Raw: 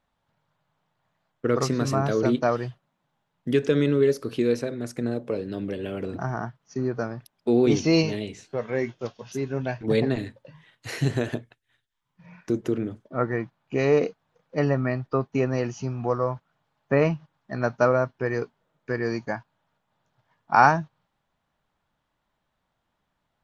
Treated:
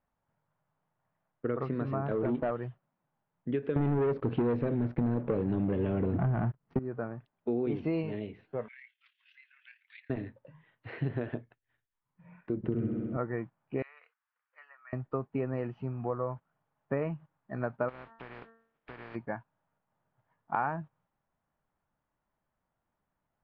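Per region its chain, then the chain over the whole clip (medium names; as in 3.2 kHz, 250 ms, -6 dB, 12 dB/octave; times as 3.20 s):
2.11–2.51 s: distance through air 170 m + waveshaping leveller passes 2 + compression 2:1, threshold -20 dBFS
3.76–6.79 s: bass shelf 280 Hz +12 dB + waveshaping leveller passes 3
8.68–10.10 s: steep high-pass 2 kHz + AM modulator 36 Hz, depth 30% + three bands compressed up and down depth 70%
12.57–13.17 s: tone controls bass +10 dB, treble -1 dB + flutter echo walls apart 11.1 m, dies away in 1.4 s
13.82–14.93 s: treble shelf 3.5 kHz -9 dB + compression 1.5:1, threshold -37 dBFS + high-pass 1.3 kHz 24 dB/octave
17.88–19.14 s: spectral contrast reduction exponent 0.28 + de-hum 227.1 Hz, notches 8 + compression 10:1, threshold -33 dBFS
whole clip: Bessel low-pass 1.8 kHz, order 8; compression, threshold -21 dBFS; trim -6 dB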